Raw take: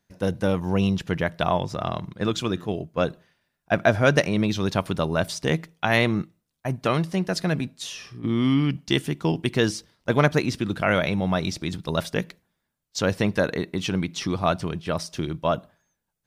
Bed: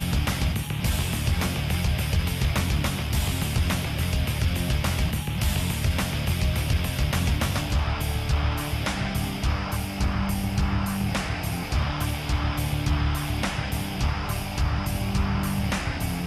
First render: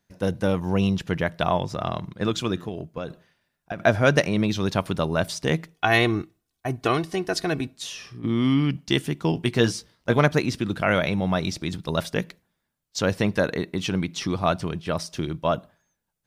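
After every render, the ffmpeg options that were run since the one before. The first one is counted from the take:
-filter_complex "[0:a]asettb=1/sr,asplit=3[s0][s1][s2];[s0]atrim=end=2.684[s3];[s1]atrim=start=2.68:end=3.8,asetpts=PTS-STARTPTS,afade=t=in:d=0.004:c=qsin,afade=t=out:st=1.116:d=0.004:c=qsin,acompressor=threshold=0.0501:ratio=12:attack=3.2:release=140:knee=1:detection=peak[s4];[s2]atrim=start=3.796[s5];[s3][s4]acrossfade=d=0.004:c1=hsin:c2=qsin[s6];[s6][s5]acrossfade=d=0.004:c1=qsin:c2=hsin,asettb=1/sr,asplit=3[s7][s8][s9];[s7]atrim=end=5.744[s10];[s8]atrim=start=5.74:end=7.77,asetpts=PTS-STARTPTS,afade=t=in:d=0.004:c=qsin,afade=t=out:st=2.026:d=0.004:c=qsin,aecho=1:1:2.7:0.65,atrim=end_sample=89523[s11];[s9]atrim=start=7.766[s12];[s10][s11]acrossfade=d=0.004:c1=hsin:c2=qsin[s13];[s13][s12]acrossfade=d=0.004:c1=qsin:c2=hsin,asettb=1/sr,asplit=3[s14][s15][s16];[s14]atrim=end=9.354[s17];[s15]atrim=start=9.35:end=10.19,asetpts=PTS-STARTPTS,afade=t=in:d=0.004:c=qsin,afade=t=out:st=0.836:d=0.004:c=qsin,asplit=2[s18][s19];[s19]adelay=17,volume=0.447[s20];[s18][s20]amix=inputs=2:normalize=0,atrim=end_sample=37044[s21];[s16]atrim=start=10.186[s22];[s17][s21]acrossfade=d=0.004:c1=hsin:c2=qsin[s23];[s23][s22]acrossfade=d=0.004:c1=qsin:c2=hsin"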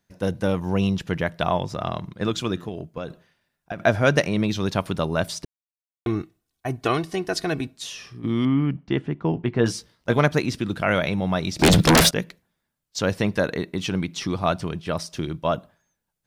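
-filter_complex "[0:a]asettb=1/sr,asplit=3[s0][s1][s2];[s0]atrim=end=8.454[s3];[s1]atrim=start=8.45:end=9.66,asetpts=PTS-STARTPTS,afade=t=in:d=0.004:c=qsin,afade=t=out:st=1.206:d=0.004:c=qsin,lowpass=1700[s4];[s2]atrim=start=9.656[s5];[s3][s4]acrossfade=d=0.004:c1=hsin:c2=qsin[s6];[s6][s5]acrossfade=d=0.004:c1=qsin:c2=hsin,asettb=1/sr,asplit=3[s7][s8][s9];[s7]atrim=end=11.594[s10];[s8]atrim=start=11.59:end=12.11,asetpts=PTS-STARTPTS,afade=t=in:d=0.004:c=qsin,afade=t=out:st=0.516:d=0.004:c=qsin,aeval=exprs='0.299*sin(PI/2*7.94*val(0)/0.299)':c=same[s11];[s9]atrim=start=12.106[s12];[s10][s11]acrossfade=d=0.004:c1=hsin:c2=qsin[s13];[s13][s12]acrossfade=d=0.004:c1=qsin:c2=hsin,asplit=3[s14][s15][s16];[s14]atrim=end=5.45,asetpts=PTS-STARTPTS,afade=t=out:st=5.446:d=0.004:c=hsin[s17];[s15]atrim=start=5.45:end=6.06,asetpts=PTS-STARTPTS,volume=0[s18];[s16]atrim=start=6.06,asetpts=PTS-STARTPTS,afade=t=in:d=0.004:c=hsin[s19];[s17][s18][s19]concat=n=3:v=0:a=1"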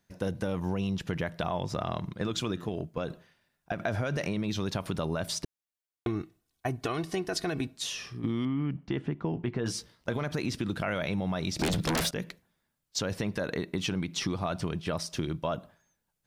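-af "alimiter=limit=0.158:level=0:latency=1:release=34,acompressor=threshold=0.0447:ratio=6"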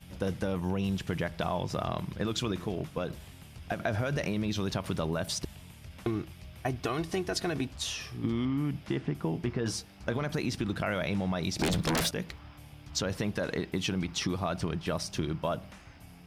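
-filter_complex "[1:a]volume=0.0668[s0];[0:a][s0]amix=inputs=2:normalize=0"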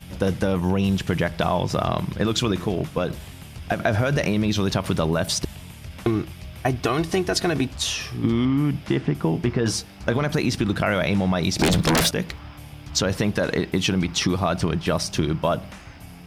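-af "volume=2.99"

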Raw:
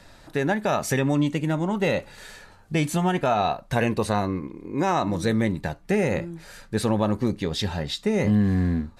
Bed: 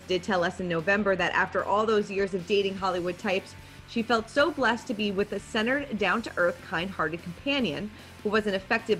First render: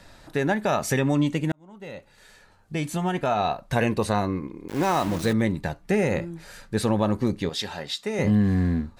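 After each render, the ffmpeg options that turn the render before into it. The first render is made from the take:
-filter_complex "[0:a]asettb=1/sr,asplit=3[s0][s1][s2];[s0]atrim=end=4.684[s3];[s1]atrim=start=4.68:end=5.33,asetpts=PTS-STARTPTS,afade=t=in:d=0.004:c=qsin,afade=t=out:st=0.646:d=0.004:c=qsin,aeval=exprs='val(0)*gte(abs(val(0)),0.0299)':c=same[s4];[s2]atrim=start=5.326[s5];[s3][s4]acrossfade=d=0.004:c1=hsin:c2=qsin[s6];[s6][s5]acrossfade=d=0.004:c1=qsin:c2=hsin,asettb=1/sr,asplit=3[s7][s8][s9];[s7]atrim=end=7.494[s10];[s8]atrim=start=7.49:end=8.19,asetpts=PTS-STARTPTS,afade=t=in:d=0.004:c=qsin,afade=t=out:st=0.696:d=0.004:c=qsin,highpass=f=550:p=1[s11];[s9]atrim=start=8.186[s12];[s10][s11]acrossfade=d=0.004:c1=hsin:c2=qsin[s13];[s13][s12]acrossfade=d=0.004:c1=qsin:c2=hsin,asplit=2[s14][s15];[s14]atrim=end=1.52,asetpts=PTS-STARTPTS,afade=t=out:st=1.516:d=0.004:c=hsin[s16];[s15]atrim=start=1.52,asetpts=PTS-STARTPTS,afade=t=in:d=2.22[s17];[s16][s17]concat=n=2:v=0:a=1"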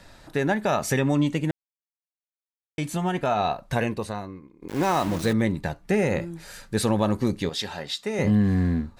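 -filter_complex "[0:a]asettb=1/sr,asplit=3[s0][s1][s2];[s0]atrim=end=6.204[s3];[s1]atrim=start=6.2:end=7.5,asetpts=PTS-STARTPTS,afade=t=in:d=0.004:c=qsin,afade=t=out:st=1.296:d=0.004:c=qsin,highshelf=f=3900:g=5.5[s4];[s2]atrim=start=7.496[s5];[s3][s4]acrossfade=d=0.004:c1=hsin:c2=qsin[s6];[s6][s5]acrossfade=d=0.004:c1=qsin:c2=hsin,asplit=4[s7][s8][s9][s10];[s7]atrim=end=1.51,asetpts=PTS-STARTPTS,afade=t=out:st=1.506:d=0.004:c=hsin[s11];[s8]atrim=start=1.51:end=2.78,asetpts=PTS-STARTPTS,volume=0[s12];[s9]atrim=start=2.78:end=4.62,asetpts=PTS-STARTPTS,afade=t=in:d=0.004:c=hsin,afade=t=out:st=0.89:d=0.95:c=qua:silence=0.16788[s13];[s10]atrim=start=4.62,asetpts=PTS-STARTPTS,afade=t=in:d=0.004:c=hsin:silence=0.16788[s14];[s11][s12][s13][s14]concat=n=4:v=0:a=1"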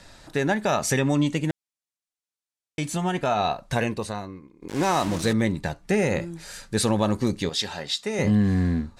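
-af "lowpass=8200,highshelf=f=5400:g=10.5"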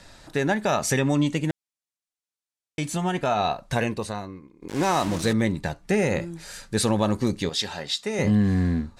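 -af anull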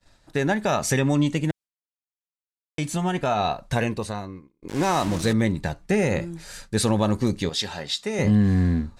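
-af "agate=range=0.0224:threshold=0.0112:ratio=3:detection=peak,lowshelf=f=120:g=5"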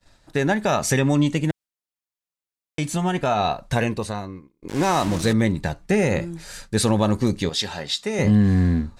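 -af "volume=1.26"

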